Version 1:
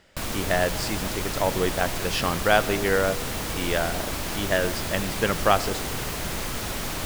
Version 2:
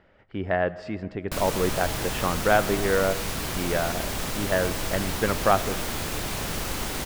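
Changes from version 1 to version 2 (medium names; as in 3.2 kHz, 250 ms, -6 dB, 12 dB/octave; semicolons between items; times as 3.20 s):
speech: add low-pass 1.8 kHz 12 dB/octave; background: entry +1.15 s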